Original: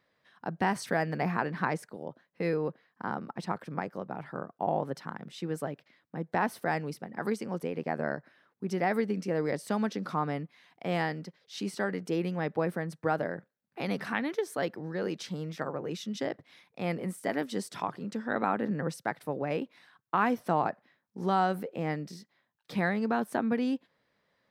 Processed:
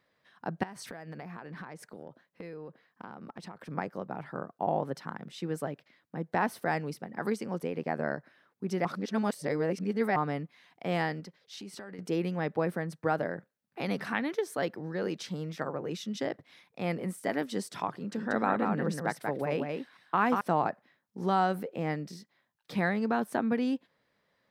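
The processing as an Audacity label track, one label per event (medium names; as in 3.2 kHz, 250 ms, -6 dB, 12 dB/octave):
0.630000	3.690000	compression 10:1, threshold -39 dBFS
8.850000	10.160000	reverse
11.200000	11.990000	compression 5:1, threshold -41 dBFS
17.930000	20.410000	delay 185 ms -4 dB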